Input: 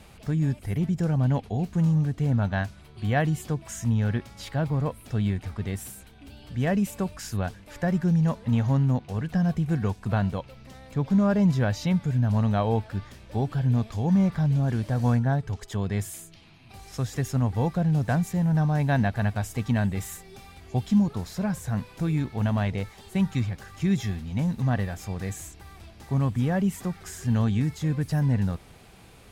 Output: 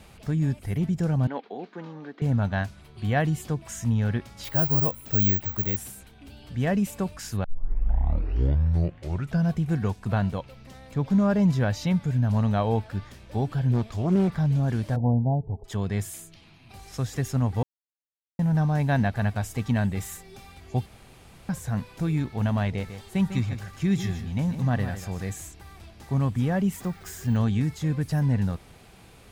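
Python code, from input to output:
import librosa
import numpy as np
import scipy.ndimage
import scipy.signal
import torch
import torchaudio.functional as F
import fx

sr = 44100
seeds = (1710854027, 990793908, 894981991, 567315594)

y = fx.cabinet(x, sr, low_hz=300.0, low_slope=24, high_hz=4000.0, hz=(640.0, 1500.0, 2800.0), db=(-4, 3, -5), at=(1.27, 2.22))
y = fx.resample_bad(y, sr, factor=2, down='none', up='zero_stuff', at=(4.44, 5.77))
y = fx.doppler_dist(y, sr, depth_ms=0.6, at=(13.72, 14.28))
y = fx.steep_lowpass(y, sr, hz=910.0, slope=72, at=(14.95, 15.64), fade=0.02)
y = fx.echo_single(y, sr, ms=149, db=-10.0, at=(22.8, 25.2), fade=0.02)
y = fx.resample_bad(y, sr, factor=2, down='none', up='hold', at=(26.72, 27.37))
y = fx.edit(y, sr, fx.tape_start(start_s=7.44, length_s=2.08),
    fx.silence(start_s=17.63, length_s=0.76),
    fx.room_tone_fill(start_s=20.86, length_s=0.63), tone=tone)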